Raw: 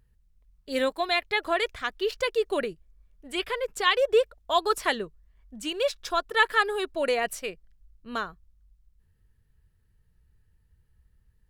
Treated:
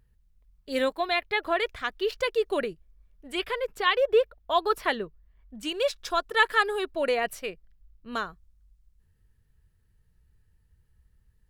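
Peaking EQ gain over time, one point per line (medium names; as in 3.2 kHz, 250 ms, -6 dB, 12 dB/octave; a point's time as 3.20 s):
peaking EQ 7.7 kHz 1.2 oct
-2.5 dB
from 0.95 s -10 dB
from 1.68 s -4 dB
from 3.74 s -12.5 dB
from 5.63 s -0.5 dB
from 6.79 s -6.5 dB
from 8.13 s +1.5 dB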